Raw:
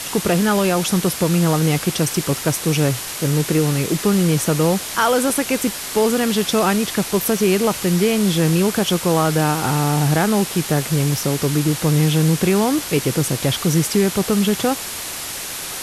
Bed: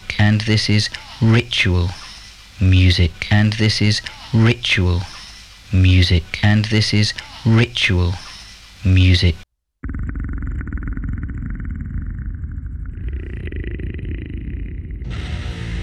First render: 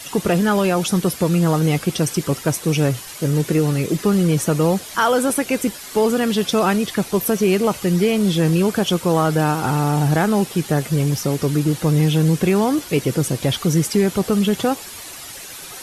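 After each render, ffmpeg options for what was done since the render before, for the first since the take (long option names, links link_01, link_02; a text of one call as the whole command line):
ffmpeg -i in.wav -af "afftdn=noise_reduction=10:noise_floor=-29" out.wav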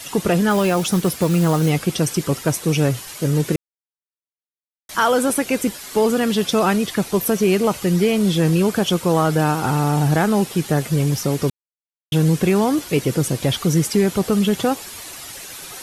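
ffmpeg -i in.wav -filter_complex "[0:a]asettb=1/sr,asplit=3[link_01][link_02][link_03];[link_01]atrim=end=0.504[link_04];[link_02]atrim=start=0.5:end=1.7,asetpts=PTS-STARTPTS,afade=type=in:duration=0.004:curve=qsin,afade=type=out:start_time=1.196:duration=0.004:curve=qsin,acrusher=bits=5:mode=log:mix=0:aa=0.000001[link_05];[link_03]atrim=start=1.696[link_06];[link_04][link_05]acrossfade=duration=0.004:curve1=hsin:curve2=qsin[link_07];[link_07][link_06]acrossfade=duration=0.004:curve1=qsin:curve2=hsin,asplit=5[link_08][link_09][link_10][link_11][link_12];[link_08]atrim=end=3.56,asetpts=PTS-STARTPTS,afade=type=out:start_time=3.556:duration=0.004:curve=hsin[link_13];[link_09]atrim=start=3.56:end=4.89,asetpts=PTS-STARTPTS,volume=0[link_14];[link_10]atrim=start=4.89:end=11.5,asetpts=PTS-STARTPTS,afade=type=in:duration=0.004:curve=hsin,afade=type=out:start_time=6.606:duration=0.004:curve=hsin[link_15];[link_11]atrim=start=11.5:end=12.12,asetpts=PTS-STARTPTS,volume=0[link_16];[link_12]atrim=start=12.12,asetpts=PTS-STARTPTS,afade=type=in:duration=0.004:curve=hsin[link_17];[link_13][link_14][link_15][link_16][link_17]concat=n=5:v=0:a=1" out.wav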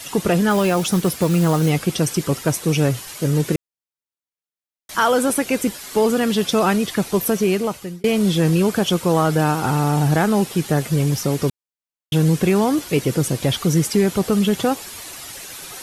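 ffmpeg -i in.wav -filter_complex "[0:a]asplit=2[link_01][link_02];[link_01]atrim=end=8.04,asetpts=PTS-STARTPTS,afade=type=out:start_time=7.14:duration=0.9:curve=qsin[link_03];[link_02]atrim=start=8.04,asetpts=PTS-STARTPTS,afade=type=in:duration=0.004:curve=hsin[link_04];[link_03][link_04]concat=n=2:v=0:a=1" out.wav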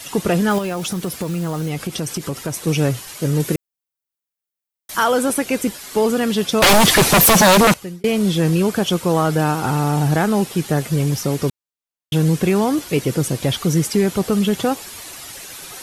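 ffmpeg -i in.wav -filter_complex "[0:a]asettb=1/sr,asplit=3[link_01][link_02][link_03];[link_01]atrim=end=0.584[link_04];[link_02]atrim=start=0.58:end=2.67,asetpts=PTS-STARTPTS,afade=type=in:duration=0.004:curve=qsin,afade=type=out:start_time=2.086:duration=0.004:curve=qsin,acompressor=threshold=-20dB:ratio=5:attack=3.2:release=140:knee=1:detection=peak[link_05];[link_03]atrim=start=2.666[link_06];[link_04][link_05]acrossfade=duration=0.004:curve1=hsin:curve2=qsin[link_07];[link_07][link_06]acrossfade=duration=0.004:curve1=qsin:curve2=hsin,asettb=1/sr,asplit=3[link_08][link_09][link_10];[link_08]atrim=end=3.404[link_11];[link_09]atrim=start=3.4:end=5.04,asetpts=PTS-STARTPTS,afade=type=in:duration=0.004:curve=qsin,afade=type=out:start_time=1.636:duration=0.004:curve=qsin,highshelf=frequency=11000:gain=10.5[link_12];[link_10]atrim=start=5.036[link_13];[link_11][link_12]acrossfade=duration=0.004:curve1=hsin:curve2=qsin[link_14];[link_14][link_13]acrossfade=duration=0.004:curve1=qsin:curve2=hsin,asettb=1/sr,asplit=3[link_15][link_16][link_17];[link_15]atrim=end=6.624[link_18];[link_16]atrim=start=6.62:end=7.74,asetpts=PTS-STARTPTS,afade=type=in:duration=0.004:curve=qsin,afade=type=out:start_time=1.116:duration=0.004:curve=qsin,aeval=exprs='0.422*sin(PI/2*5.01*val(0)/0.422)':channel_layout=same[link_19];[link_17]atrim=start=7.736[link_20];[link_18][link_19]acrossfade=duration=0.004:curve1=hsin:curve2=qsin[link_21];[link_21][link_20]acrossfade=duration=0.004:curve1=qsin:curve2=hsin" out.wav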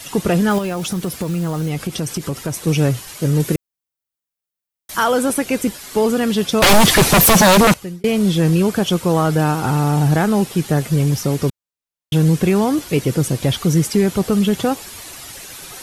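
ffmpeg -i in.wav -af "lowshelf=frequency=160:gain=5" out.wav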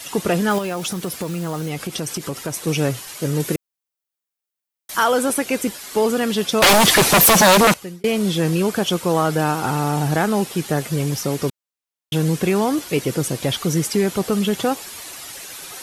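ffmpeg -i in.wav -af "lowshelf=frequency=170:gain=-11.5" out.wav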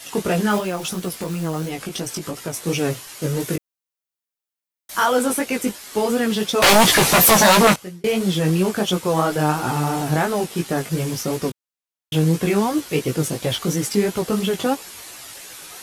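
ffmpeg -i in.wav -filter_complex "[0:a]asplit=2[link_01][link_02];[link_02]acrusher=bits=3:mix=0:aa=0.5,volume=-11dB[link_03];[link_01][link_03]amix=inputs=2:normalize=0,flanger=delay=16:depth=3.8:speed=2.9" out.wav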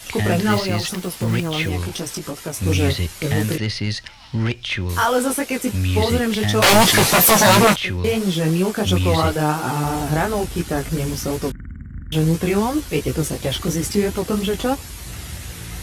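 ffmpeg -i in.wav -i bed.wav -filter_complex "[1:a]volume=-8dB[link_01];[0:a][link_01]amix=inputs=2:normalize=0" out.wav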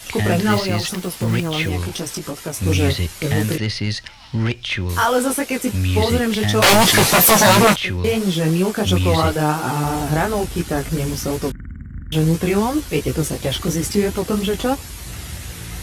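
ffmpeg -i in.wav -af "volume=1dB,alimiter=limit=-3dB:level=0:latency=1" out.wav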